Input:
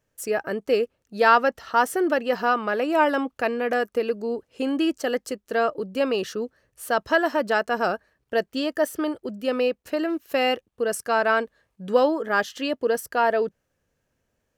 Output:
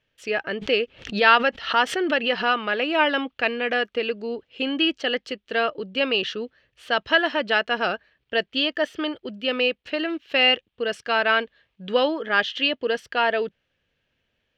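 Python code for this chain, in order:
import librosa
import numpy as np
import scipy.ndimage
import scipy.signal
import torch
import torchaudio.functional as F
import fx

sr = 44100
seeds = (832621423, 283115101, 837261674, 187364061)

y = fx.curve_eq(x, sr, hz=(1100.0, 3200.0, 11000.0), db=(0, 15, -24))
y = fx.pre_swell(y, sr, db_per_s=130.0, at=(0.56, 2.53))
y = y * librosa.db_to_amplitude(-2.0)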